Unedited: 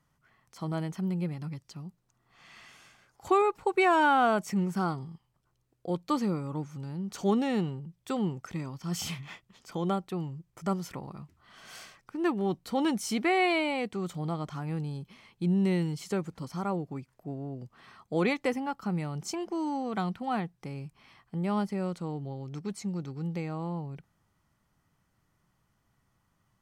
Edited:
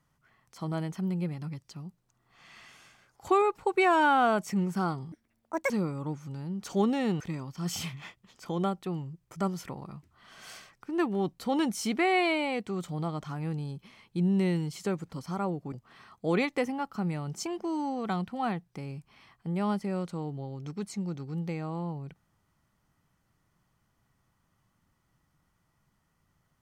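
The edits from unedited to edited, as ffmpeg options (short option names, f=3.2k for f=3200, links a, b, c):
-filter_complex "[0:a]asplit=5[a][b][c][d][e];[a]atrim=end=5.124[f];[b]atrim=start=5.12:end=6.19,asetpts=PTS-STARTPTS,asetrate=81144,aresample=44100,atrim=end_sample=25645,asetpts=PTS-STARTPTS[g];[c]atrim=start=6.186:end=7.692[h];[d]atrim=start=8.458:end=16.982[i];[e]atrim=start=17.598[j];[f][g]acrossfade=d=0.004:c1=hsin:c2=hsin[k];[k][h]acrossfade=d=0.004:c1=hsin:c2=hsin[l];[l][i]acrossfade=d=0.004:c1=hsin:c2=hsin[m];[m][j]acrossfade=d=0.004:c1=hsin:c2=hsin"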